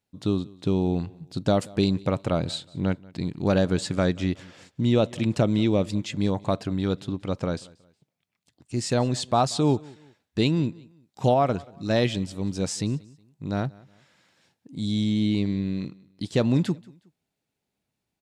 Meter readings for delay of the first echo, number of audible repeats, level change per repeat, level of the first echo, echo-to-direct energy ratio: 183 ms, 2, -9.5 dB, -23.5 dB, -23.0 dB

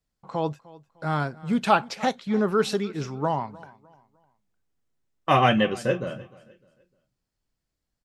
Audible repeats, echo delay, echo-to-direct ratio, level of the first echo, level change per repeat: 2, 303 ms, -20.5 dB, -21.0 dB, -9.5 dB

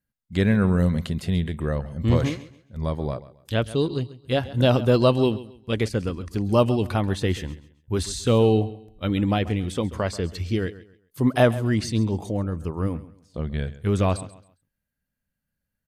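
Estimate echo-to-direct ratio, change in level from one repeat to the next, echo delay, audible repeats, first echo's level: -16.5 dB, -11.0 dB, 135 ms, 2, -17.0 dB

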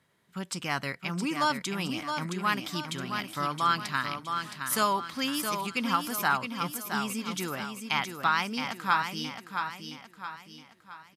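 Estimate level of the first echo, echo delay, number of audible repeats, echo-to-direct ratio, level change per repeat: -6.5 dB, 668 ms, 4, -5.5 dB, -7.5 dB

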